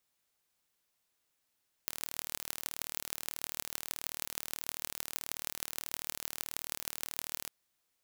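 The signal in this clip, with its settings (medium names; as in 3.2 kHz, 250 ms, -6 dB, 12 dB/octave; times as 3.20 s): pulse train 38.4 per s, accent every 6, -6.5 dBFS 5.60 s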